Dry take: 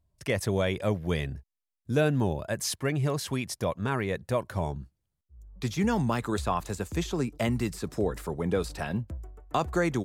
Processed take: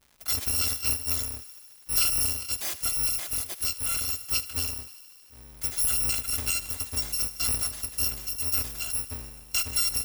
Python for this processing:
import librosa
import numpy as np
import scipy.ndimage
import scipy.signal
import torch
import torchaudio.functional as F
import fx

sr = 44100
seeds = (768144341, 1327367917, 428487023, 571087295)

y = fx.bit_reversed(x, sr, seeds[0], block=256)
y = fx.echo_thinned(y, sr, ms=76, feedback_pct=81, hz=620.0, wet_db=-17.0)
y = fx.dmg_crackle(y, sr, seeds[1], per_s=220.0, level_db=-46.0)